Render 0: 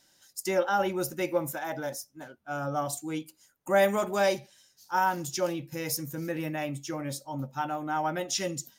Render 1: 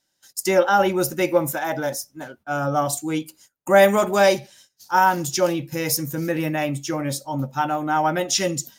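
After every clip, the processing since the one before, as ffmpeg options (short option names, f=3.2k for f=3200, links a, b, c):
-af "agate=range=-18dB:threshold=-58dB:ratio=16:detection=peak,volume=9dB"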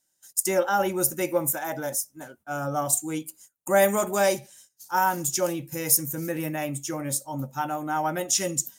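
-af "highshelf=f=6.1k:t=q:w=1.5:g=9,volume=-6dB"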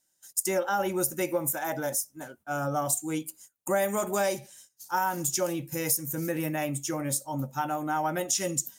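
-af "acompressor=threshold=-24dB:ratio=4"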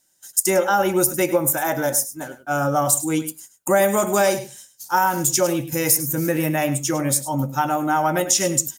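-af "aecho=1:1:102:0.211,volume=9dB"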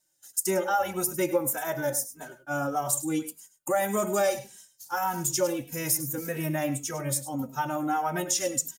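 -filter_complex "[0:a]asplit=2[a][b];[b]adelay=2.8,afreqshift=-1.7[c];[a][c]amix=inputs=2:normalize=1,volume=-5.5dB"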